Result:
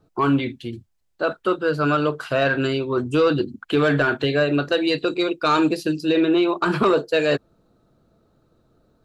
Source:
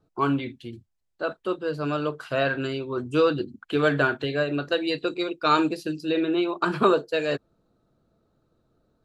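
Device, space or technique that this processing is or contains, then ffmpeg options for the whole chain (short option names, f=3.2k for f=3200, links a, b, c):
soft clipper into limiter: -filter_complex "[0:a]asettb=1/sr,asplit=3[a][b][c];[a]atrim=end=1.334[d];[b]atrim=start=1.33:end=1.97,asetpts=PTS-STARTPTS,afade=t=in:d=0.004:c=qsin,afade=t=out:st=0.636:d=0.004:c=qsin,equalizer=f=1.4k:t=o:w=0.22:g=10.5[e];[c]atrim=start=1.966[f];[d][e]acrossfade=d=0.004:c1=hsin:c2=qsin[g];[g][f]acrossfade=d=0.004:c1=qsin:c2=hsin,asoftclip=type=tanh:threshold=-12dB,alimiter=limit=-18dB:level=0:latency=1:release=28,volume=7dB"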